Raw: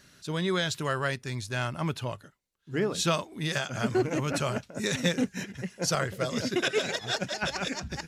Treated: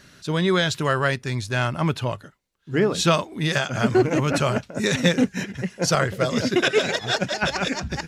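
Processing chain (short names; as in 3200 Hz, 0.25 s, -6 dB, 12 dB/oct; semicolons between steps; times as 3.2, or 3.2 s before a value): high shelf 5700 Hz -6.5 dB; gain +8 dB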